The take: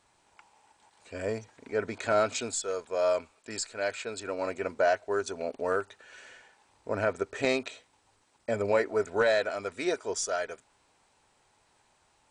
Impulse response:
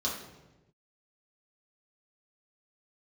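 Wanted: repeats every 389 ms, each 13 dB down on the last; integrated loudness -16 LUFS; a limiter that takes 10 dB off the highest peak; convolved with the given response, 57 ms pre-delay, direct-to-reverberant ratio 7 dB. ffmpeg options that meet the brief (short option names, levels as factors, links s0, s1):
-filter_complex "[0:a]alimiter=limit=0.075:level=0:latency=1,aecho=1:1:389|778|1167:0.224|0.0493|0.0108,asplit=2[s0][s1];[1:a]atrim=start_sample=2205,adelay=57[s2];[s1][s2]afir=irnorm=-1:irlink=0,volume=0.224[s3];[s0][s3]amix=inputs=2:normalize=0,volume=7.5"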